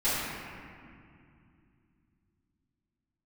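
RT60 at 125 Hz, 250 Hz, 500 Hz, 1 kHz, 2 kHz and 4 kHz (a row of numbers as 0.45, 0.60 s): 4.1, 3.8, 2.6, 2.3, 2.2, 1.5 s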